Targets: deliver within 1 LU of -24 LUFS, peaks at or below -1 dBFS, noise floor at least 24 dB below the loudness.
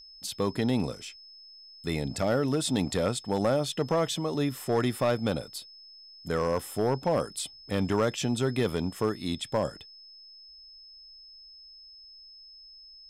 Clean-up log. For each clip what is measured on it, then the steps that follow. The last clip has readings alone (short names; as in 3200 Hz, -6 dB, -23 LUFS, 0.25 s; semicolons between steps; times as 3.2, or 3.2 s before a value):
clipped 0.5%; flat tops at -18.5 dBFS; steady tone 5200 Hz; tone level -48 dBFS; loudness -29.0 LUFS; peak -18.5 dBFS; loudness target -24.0 LUFS
-> clip repair -18.5 dBFS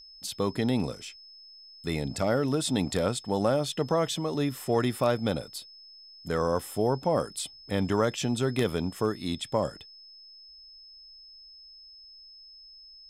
clipped 0.0%; steady tone 5200 Hz; tone level -48 dBFS
-> notch 5200 Hz, Q 30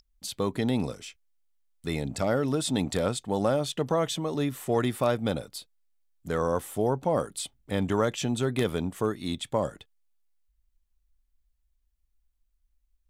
steady tone none; loudness -29.0 LUFS; peak -10.0 dBFS; loudness target -24.0 LUFS
-> gain +5 dB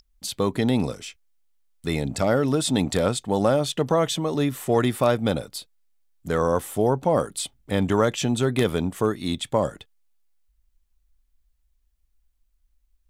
loudness -24.0 LUFS; peak -5.0 dBFS; noise floor -69 dBFS